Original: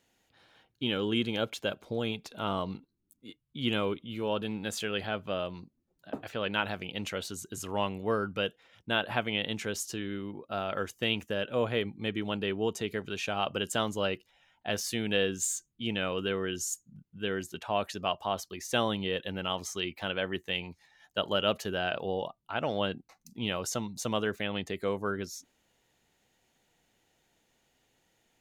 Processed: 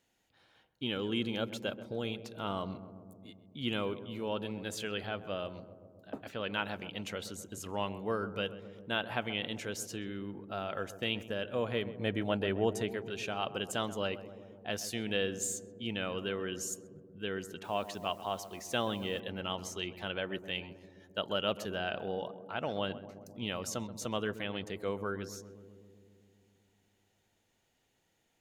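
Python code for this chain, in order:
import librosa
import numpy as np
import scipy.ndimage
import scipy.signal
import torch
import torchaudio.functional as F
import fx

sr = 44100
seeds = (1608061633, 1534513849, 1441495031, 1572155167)

p1 = fx.graphic_eq_15(x, sr, hz=(100, 250, 630, 1600, 10000), db=(7, 4, 11, 6, 5), at=(11.98, 12.92))
p2 = fx.quant_dither(p1, sr, seeds[0], bits=10, dither='triangular', at=(17.64, 19.2))
p3 = p2 + fx.echo_filtered(p2, sr, ms=131, feedback_pct=79, hz=1000.0, wet_db=-12, dry=0)
y = p3 * 10.0 ** (-4.5 / 20.0)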